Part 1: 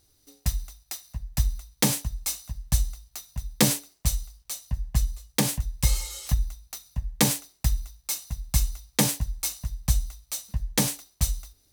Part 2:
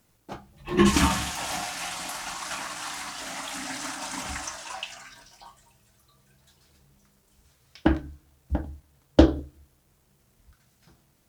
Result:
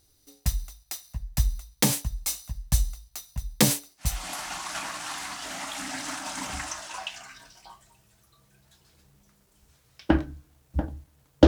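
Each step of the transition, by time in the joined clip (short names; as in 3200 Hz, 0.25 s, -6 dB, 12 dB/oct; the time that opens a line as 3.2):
part 1
4.15 switch to part 2 from 1.91 s, crossfade 0.36 s linear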